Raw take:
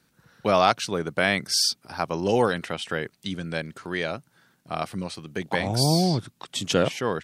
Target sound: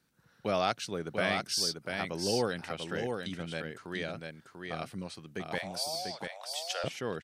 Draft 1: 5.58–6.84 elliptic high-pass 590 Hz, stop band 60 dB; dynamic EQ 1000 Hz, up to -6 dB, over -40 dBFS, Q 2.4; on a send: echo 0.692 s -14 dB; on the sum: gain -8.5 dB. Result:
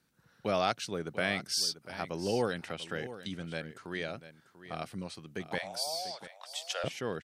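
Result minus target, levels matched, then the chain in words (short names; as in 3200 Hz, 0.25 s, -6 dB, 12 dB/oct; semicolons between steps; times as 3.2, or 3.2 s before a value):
echo-to-direct -9 dB
5.58–6.84 elliptic high-pass 590 Hz, stop band 60 dB; dynamic EQ 1000 Hz, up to -6 dB, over -40 dBFS, Q 2.4; on a send: echo 0.692 s -5 dB; on the sum: gain -8.5 dB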